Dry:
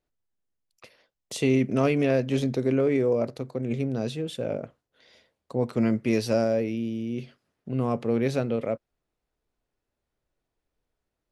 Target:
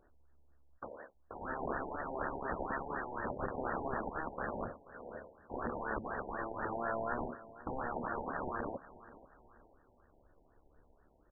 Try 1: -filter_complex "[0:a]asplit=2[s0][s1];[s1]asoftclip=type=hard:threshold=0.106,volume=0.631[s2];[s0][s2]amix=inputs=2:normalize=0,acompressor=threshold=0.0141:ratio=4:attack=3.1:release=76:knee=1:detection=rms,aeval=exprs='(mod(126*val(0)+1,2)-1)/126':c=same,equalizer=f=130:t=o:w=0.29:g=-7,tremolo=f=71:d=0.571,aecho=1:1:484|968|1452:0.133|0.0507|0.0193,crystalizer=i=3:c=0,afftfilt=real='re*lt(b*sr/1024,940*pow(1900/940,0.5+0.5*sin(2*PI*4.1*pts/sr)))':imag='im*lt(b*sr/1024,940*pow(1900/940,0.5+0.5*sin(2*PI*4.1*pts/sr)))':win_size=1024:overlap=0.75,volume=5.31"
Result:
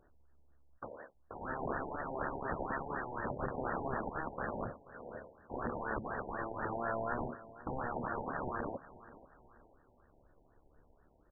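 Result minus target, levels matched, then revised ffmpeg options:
125 Hz band +3.0 dB
-filter_complex "[0:a]asplit=2[s0][s1];[s1]asoftclip=type=hard:threshold=0.106,volume=0.631[s2];[s0][s2]amix=inputs=2:normalize=0,acompressor=threshold=0.0141:ratio=4:attack=3.1:release=76:knee=1:detection=rms,aeval=exprs='(mod(126*val(0)+1,2)-1)/126':c=same,equalizer=f=130:t=o:w=0.29:g=-18,tremolo=f=71:d=0.571,aecho=1:1:484|968|1452:0.133|0.0507|0.0193,crystalizer=i=3:c=0,afftfilt=real='re*lt(b*sr/1024,940*pow(1900/940,0.5+0.5*sin(2*PI*4.1*pts/sr)))':imag='im*lt(b*sr/1024,940*pow(1900/940,0.5+0.5*sin(2*PI*4.1*pts/sr)))':win_size=1024:overlap=0.75,volume=5.31"

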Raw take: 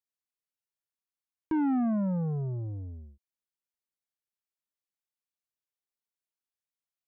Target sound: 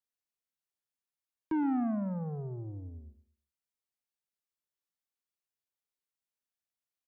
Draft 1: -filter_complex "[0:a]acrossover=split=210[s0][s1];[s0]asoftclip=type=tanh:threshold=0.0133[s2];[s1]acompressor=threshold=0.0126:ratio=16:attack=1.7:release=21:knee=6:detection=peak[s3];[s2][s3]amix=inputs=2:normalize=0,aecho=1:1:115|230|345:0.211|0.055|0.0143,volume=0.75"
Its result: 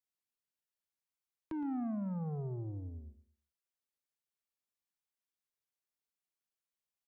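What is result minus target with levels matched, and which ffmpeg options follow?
compression: peak gain reduction +12 dB
-filter_complex "[0:a]acrossover=split=210[s0][s1];[s0]asoftclip=type=tanh:threshold=0.0133[s2];[s2][s1]amix=inputs=2:normalize=0,aecho=1:1:115|230|345:0.211|0.055|0.0143,volume=0.75"

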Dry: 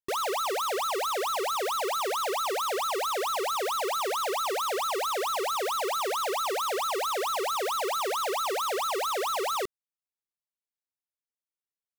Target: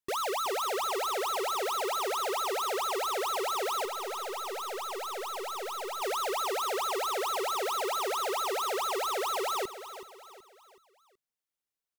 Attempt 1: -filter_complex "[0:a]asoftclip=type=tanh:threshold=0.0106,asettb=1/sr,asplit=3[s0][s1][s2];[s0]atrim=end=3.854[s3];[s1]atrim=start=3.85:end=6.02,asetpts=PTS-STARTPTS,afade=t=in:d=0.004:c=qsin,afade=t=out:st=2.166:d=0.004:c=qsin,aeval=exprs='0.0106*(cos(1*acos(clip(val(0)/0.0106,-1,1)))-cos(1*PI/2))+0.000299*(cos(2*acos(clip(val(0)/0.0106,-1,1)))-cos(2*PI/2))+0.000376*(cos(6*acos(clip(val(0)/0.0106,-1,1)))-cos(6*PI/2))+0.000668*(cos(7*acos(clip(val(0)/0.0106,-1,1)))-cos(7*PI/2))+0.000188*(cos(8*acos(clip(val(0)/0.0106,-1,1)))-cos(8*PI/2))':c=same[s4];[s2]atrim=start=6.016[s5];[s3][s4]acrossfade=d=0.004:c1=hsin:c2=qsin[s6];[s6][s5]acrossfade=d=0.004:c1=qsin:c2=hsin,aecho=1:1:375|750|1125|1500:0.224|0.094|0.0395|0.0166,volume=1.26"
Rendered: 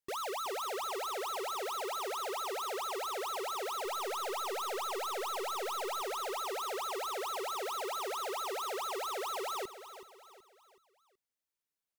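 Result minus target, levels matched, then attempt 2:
saturation: distortion +6 dB
-filter_complex "[0:a]asoftclip=type=tanh:threshold=0.0237,asettb=1/sr,asplit=3[s0][s1][s2];[s0]atrim=end=3.854[s3];[s1]atrim=start=3.85:end=6.02,asetpts=PTS-STARTPTS,afade=t=in:d=0.004:c=qsin,afade=t=out:st=2.166:d=0.004:c=qsin,aeval=exprs='0.0106*(cos(1*acos(clip(val(0)/0.0106,-1,1)))-cos(1*PI/2))+0.000299*(cos(2*acos(clip(val(0)/0.0106,-1,1)))-cos(2*PI/2))+0.000376*(cos(6*acos(clip(val(0)/0.0106,-1,1)))-cos(6*PI/2))+0.000668*(cos(7*acos(clip(val(0)/0.0106,-1,1)))-cos(7*PI/2))+0.000188*(cos(8*acos(clip(val(0)/0.0106,-1,1)))-cos(8*PI/2))':c=same[s4];[s2]atrim=start=6.016[s5];[s3][s4]acrossfade=d=0.004:c1=hsin:c2=qsin[s6];[s6][s5]acrossfade=d=0.004:c1=qsin:c2=hsin,aecho=1:1:375|750|1125|1500:0.224|0.094|0.0395|0.0166,volume=1.26"

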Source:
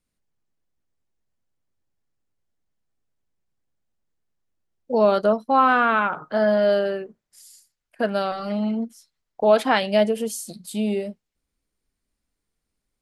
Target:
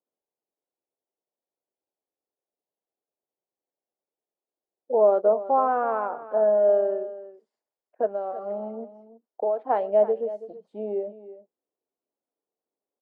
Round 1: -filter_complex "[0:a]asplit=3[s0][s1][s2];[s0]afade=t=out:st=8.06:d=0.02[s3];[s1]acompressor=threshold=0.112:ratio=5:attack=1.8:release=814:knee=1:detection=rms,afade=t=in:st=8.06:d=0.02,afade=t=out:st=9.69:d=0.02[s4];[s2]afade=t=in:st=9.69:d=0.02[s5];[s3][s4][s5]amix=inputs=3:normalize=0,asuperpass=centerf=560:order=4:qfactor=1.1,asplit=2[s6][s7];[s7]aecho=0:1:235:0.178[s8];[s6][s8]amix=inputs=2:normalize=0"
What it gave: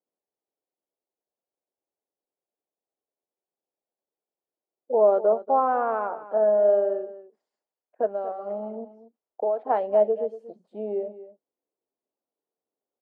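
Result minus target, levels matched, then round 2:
echo 93 ms early
-filter_complex "[0:a]asplit=3[s0][s1][s2];[s0]afade=t=out:st=8.06:d=0.02[s3];[s1]acompressor=threshold=0.112:ratio=5:attack=1.8:release=814:knee=1:detection=rms,afade=t=in:st=8.06:d=0.02,afade=t=out:st=9.69:d=0.02[s4];[s2]afade=t=in:st=9.69:d=0.02[s5];[s3][s4][s5]amix=inputs=3:normalize=0,asuperpass=centerf=560:order=4:qfactor=1.1,asplit=2[s6][s7];[s7]aecho=0:1:328:0.178[s8];[s6][s8]amix=inputs=2:normalize=0"

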